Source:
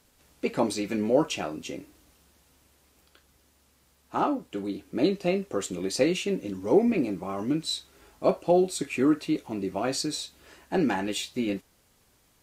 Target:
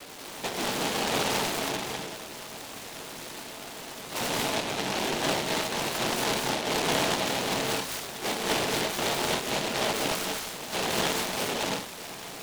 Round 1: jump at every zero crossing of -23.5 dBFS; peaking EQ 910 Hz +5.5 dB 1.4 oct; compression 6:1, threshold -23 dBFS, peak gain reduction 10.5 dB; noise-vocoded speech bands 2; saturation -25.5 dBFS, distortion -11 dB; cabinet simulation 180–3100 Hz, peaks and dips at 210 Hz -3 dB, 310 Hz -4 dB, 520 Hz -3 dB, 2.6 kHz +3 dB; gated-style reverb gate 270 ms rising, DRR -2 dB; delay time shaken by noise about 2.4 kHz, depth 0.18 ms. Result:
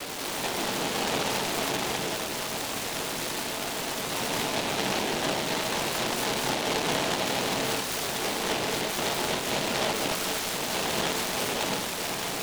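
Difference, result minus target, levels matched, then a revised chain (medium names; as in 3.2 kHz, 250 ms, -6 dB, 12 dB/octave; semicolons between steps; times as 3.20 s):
compression: peak gain reduction +10.5 dB; jump at every zero crossing: distortion +8 dB
jump at every zero crossing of -34 dBFS; peaking EQ 910 Hz +5.5 dB 1.4 oct; noise-vocoded speech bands 2; saturation -25.5 dBFS, distortion -5 dB; cabinet simulation 180–3100 Hz, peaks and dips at 210 Hz -3 dB, 310 Hz -4 dB, 520 Hz -3 dB, 2.6 kHz +3 dB; gated-style reverb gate 270 ms rising, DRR -2 dB; delay time shaken by noise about 2.4 kHz, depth 0.18 ms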